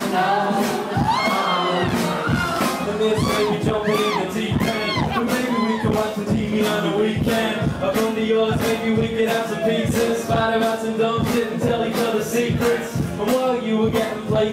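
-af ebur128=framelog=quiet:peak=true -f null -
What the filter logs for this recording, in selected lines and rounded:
Integrated loudness:
  I:         -20.4 LUFS
  Threshold: -30.4 LUFS
Loudness range:
  LRA:         0.7 LU
  Threshold: -40.4 LUFS
  LRA low:   -20.8 LUFS
  LRA high:  -20.1 LUFS
True peak:
  Peak:       -9.3 dBFS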